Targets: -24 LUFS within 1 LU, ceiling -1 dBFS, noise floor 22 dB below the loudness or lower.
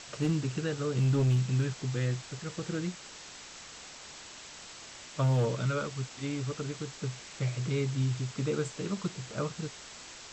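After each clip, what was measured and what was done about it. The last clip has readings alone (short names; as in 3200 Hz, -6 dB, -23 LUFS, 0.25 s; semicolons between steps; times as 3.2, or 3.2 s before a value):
clipped 0.8%; flat tops at -21.5 dBFS; noise floor -48 dBFS; noise floor target -55 dBFS; loudness -32.5 LUFS; peak -21.5 dBFS; loudness target -24.0 LUFS
-> clip repair -21.5 dBFS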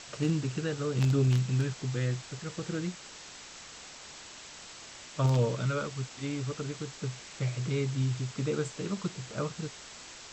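clipped 0.0%; noise floor -48 dBFS; noise floor target -54 dBFS
-> denoiser 6 dB, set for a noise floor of -48 dBFS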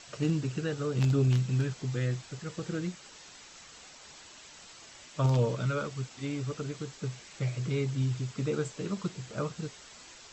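noise floor -52 dBFS; noise floor target -54 dBFS
-> denoiser 6 dB, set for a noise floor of -52 dBFS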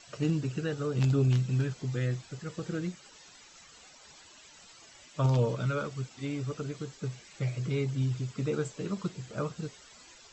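noise floor -55 dBFS; loudness -32.0 LUFS; peak -13.0 dBFS; loudness target -24.0 LUFS
-> gain +8 dB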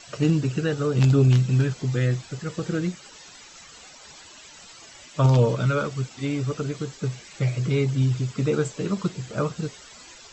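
loudness -24.0 LUFS; peak -5.0 dBFS; noise floor -47 dBFS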